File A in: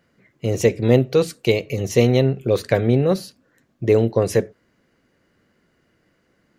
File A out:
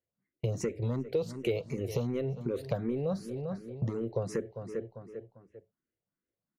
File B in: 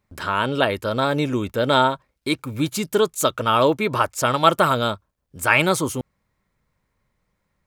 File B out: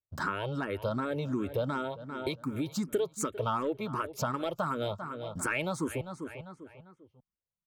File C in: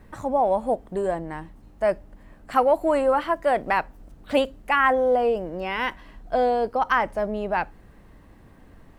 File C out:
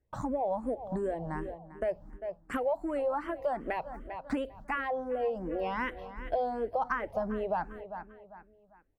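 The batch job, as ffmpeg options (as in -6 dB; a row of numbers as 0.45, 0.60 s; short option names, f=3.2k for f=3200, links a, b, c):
-filter_complex "[0:a]agate=range=-29dB:threshold=-42dB:ratio=16:detection=peak,tiltshelf=f=1.5k:g=4,asoftclip=type=tanh:threshold=-2.5dB,asplit=2[a][b];[b]adelay=397,lowpass=f=3.9k:p=1,volume=-17.5dB,asplit=2[c][d];[d]adelay=397,lowpass=f=3.9k:p=1,volume=0.37,asplit=2[e][f];[f]adelay=397,lowpass=f=3.9k:p=1,volume=0.37[g];[a][c][e][g]amix=inputs=4:normalize=0,acompressor=threshold=-27dB:ratio=6,asplit=2[h][i];[i]afreqshift=2.7[j];[h][j]amix=inputs=2:normalize=1"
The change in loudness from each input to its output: -15.5, -13.0, -10.5 LU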